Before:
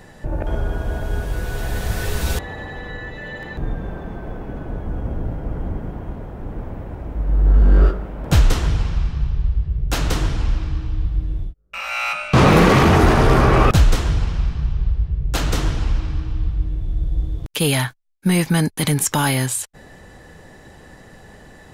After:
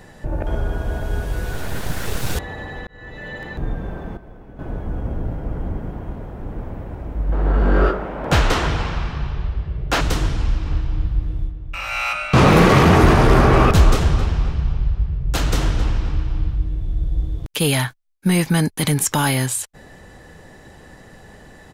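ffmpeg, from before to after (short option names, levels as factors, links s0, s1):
-filter_complex "[0:a]asettb=1/sr,asplit=3[s0][s1][s2];[s0]atrim=end=1.534[s3];[s1]atrim=start=1.53:end=2.35,asetpts=PTS-STARTPTS,afade=t=in:d=0.004:c=qsin,afade=t=out:st=0.816:d=0.004:c=qsin,aeval=exprs='abs(val(0))':c=same[s4];[s2]atrim=start=2.346[s5];[s3][s4]acrossfade=d=0.004:c1=hsin:c2=qsin[s6];[s6][s5]acrossfade=d=0.004:c1=qsin:c2=hsin,asettb=1/sr,asplit=3[s7][s8][s9];[s7]atrim=end=7.324[s10];[s8]atrim=start=7.32:end=10.01,asetpts=PTS-STARTPTS,afade=t=in:d=0.004:c=qsin,afade=t=out:st=2.686:d=0.004:c=qsin,asplit=2[s11][s12];[s12]highpass=f=720:p=1,volume=7.94,asoftclip=type=tanh:threshold=0.668[s13];[s11][s13]amix=inputs=2:normalize=0,lowpass=f=1800:p=1,volume=0.501[s14];[s9]atrim=start=10.006[s15];[s10][s14]acrossfade=d=0.004:c1=hsin:c2=qsin[s16];[s16][s15]acrossfade=d=0.004:c1=qsin:c2=hsin,asplit=3[s17][s18][s19];[s17]afade=t=out:st=10.65:d=0.02[s20];[s18]asplit=2[s21][s22];[s22]adelay=266,lowpass=f=2800:p=1,volume=0.398,asplit=2[s23][s24];[s24]adelay=266,lowpass=f=2800:p=1,volume=0.4,asplit=2[s25][s26];[s26]adelay=266,lowpass=f=2800:p=1,volume=0.4,asplit=2[s27][s28];[s28]adelay=266,lowpass=f=2800:p=1,volume=0.4,asplit=2[s29][s30];[s30]adelay=266,lowpass=f=2800:p=1,volume=0.4[s31];[s21][s23][s25][s27][s29][s31]amix=inputs=6:normalize=0,afade=t=in:st=10.65:d=0.02,afade=t=out:st=16.55:d=0.02[s32];[s19]afade=t=in:st=16.55:d=0.02[s33];[s20][s32][s33]amix=inputs=3:normalize=0,asplit=4[s34][s35][s36][s37];[s34]atrim=end=2.87,asetpts=PTS-STARTPTS,afade=t=out:st=2.866:d=0.004:c=hsin[s38];[s35]atrim=start=2.87:end=4.172,asetpts=PTS-STARTPTS,afade=t=in:d=0.52:c=qsin[s39];[s36]atrim=start=4.168:end=4.592,asetpts=PTS-STARTPTS,volume=0.282[s40];[s37]atrim=start=4.588[s41];[s38][s39]concat=n=2:v=0:a=1[s42];[s42][s40]acrossfade=d=0.004:c1=hsin:c2=hsin[s43];[s43][s41]acrossfade=d=0.004:c1=hsin:c2=hsin"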